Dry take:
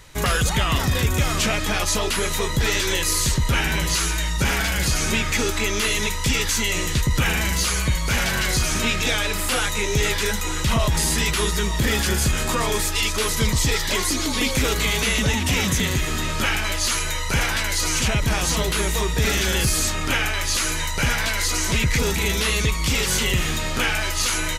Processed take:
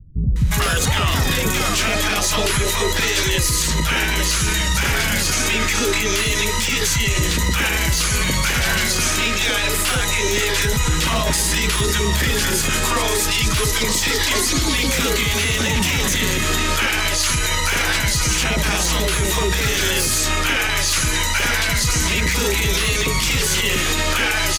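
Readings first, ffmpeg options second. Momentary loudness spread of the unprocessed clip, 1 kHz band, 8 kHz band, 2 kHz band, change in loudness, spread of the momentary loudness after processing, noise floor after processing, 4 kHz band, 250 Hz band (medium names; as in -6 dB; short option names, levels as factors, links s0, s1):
2 LU, +3.0 dB, +4.0 dB, +4.0 dB, +3.5 dB, 1 LU, -20 dBFS, +4.0 dB, +2.0 dB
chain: -filter_complex "[0:a]lowshelf=f=68:g=-5,aeval=exprs='0.2*(abs(mod(val(0)/0.2+3,4)-2)-1)':c=same,acrossover=split=210|750[s0][s1][s2];[s2]adelay=360[s3];[s1]adelay=420[s4];[s0][s4][s3]amix=inputs=3:normalize=0,alimiter=level_in=8.41:limit=0.891:release=50:level=0:latency=1,volume=0.376"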